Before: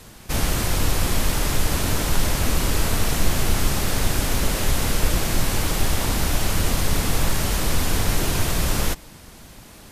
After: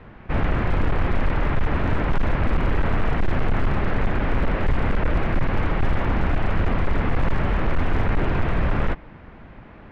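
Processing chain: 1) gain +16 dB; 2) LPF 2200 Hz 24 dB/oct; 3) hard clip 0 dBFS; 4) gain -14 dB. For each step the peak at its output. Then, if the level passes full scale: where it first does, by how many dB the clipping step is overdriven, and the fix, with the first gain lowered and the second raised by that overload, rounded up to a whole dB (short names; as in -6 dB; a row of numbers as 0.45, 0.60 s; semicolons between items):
+10.0, +9.5, 0.0, -14.0 dBFS; step 1, 9.5 dB; step 1 +6 dB, step 4 -4 dB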